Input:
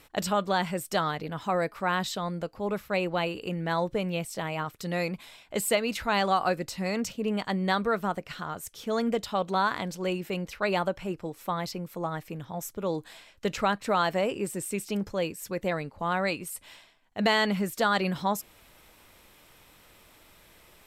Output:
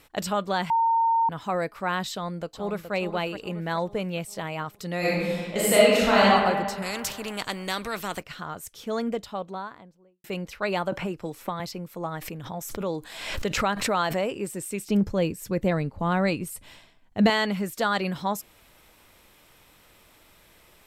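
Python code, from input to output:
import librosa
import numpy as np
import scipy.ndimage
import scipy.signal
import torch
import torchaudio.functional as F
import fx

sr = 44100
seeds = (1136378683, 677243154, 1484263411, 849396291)

y = fx.echo_throw(x, sr, start_s=2.11, length_s=0.83, ms=420, feedback_pct=50, wet_db=-9.0)
y = fx.reverb_throw(y, sr, start_s=4.98, length_s=1.25, rt60_s=1.7, drr_db=-8.0)
y = fx.spectral_comp(y, sr, ratio=2.0, at=(6.82, 8.23))
y = fx.studio_fade_out(y, sr, start_s=8.78, length_s=1.46)
y = fx.band_squash(y, sr, depth_pct=100, at=(10.92, 11.6))
y = fx.pre_swell(y, sr, db_per_s=53.0, at=(12.18, 14.31))
y = fx.low_shelf(y, sr, hz=340.0, db=12.0, at=(14.88, 17.3))
y = fx.edit(y, sr, fx.bleep(start_s=0.7, length_s=0.59, hz=914.0, db=-18.5), tone=tone)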